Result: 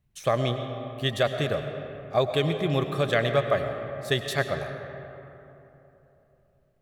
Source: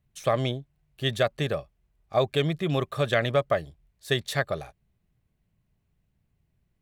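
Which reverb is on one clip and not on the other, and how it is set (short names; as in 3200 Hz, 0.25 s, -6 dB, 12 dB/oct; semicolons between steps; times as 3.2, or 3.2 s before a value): digital reverb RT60 3.3 s, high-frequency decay 0.45×, pre-delay 65 ms, DRR 6.5 dB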